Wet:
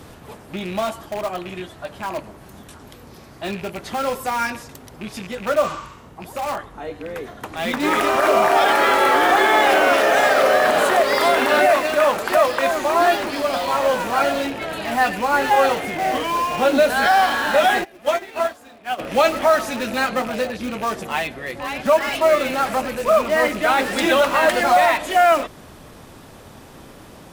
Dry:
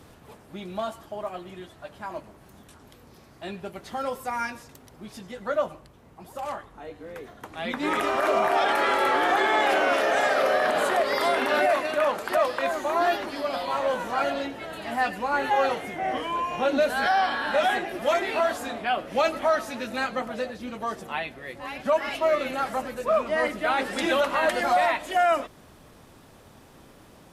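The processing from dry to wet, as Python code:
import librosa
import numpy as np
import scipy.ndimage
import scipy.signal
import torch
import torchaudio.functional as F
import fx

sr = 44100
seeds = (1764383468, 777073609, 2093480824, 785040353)

p1 = fx.rattle_buzz(x, sr, strikes_db=-43.0, level_db=-34.0)
p2 = (np.mod(10.0 ** (28.5 / 20.0) * p1 + 1.0, 2.0) - 1.0) / 10.0 ** (28.5 / 20.0)
p3 = p1 + (p2 * 10.0 ** (-11.0 / 20.0))
p4 = fx.spec_repair(p3, sr, seeds[0], start_s=5.66, length_s=0.44, low_hz=880.0, high_hz=8200.0, source='both')
p5 = fx.upward_expand(p4, sr, threshold_db=-32.0, expansion=2.5, at=(17.83, 18.98), fade=0.02)
y = p5 * 10.0 ** (7.0 / 20.0)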